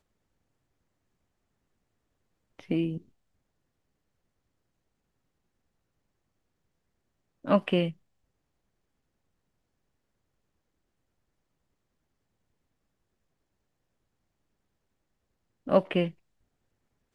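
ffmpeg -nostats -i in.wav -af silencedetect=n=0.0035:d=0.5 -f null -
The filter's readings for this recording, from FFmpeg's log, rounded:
silence_start: 0.00
silence_end: 2.59 | silence_duration: 2.59
silence_start: 3.02
silence_end: 7.44 | silence_duration: 4.42
silence_start: 7.93
silence_end: 15.67 | silence_duration: 7.74
silence_start: 16.12
silence_end: 17.14 | silence_duration: 1.03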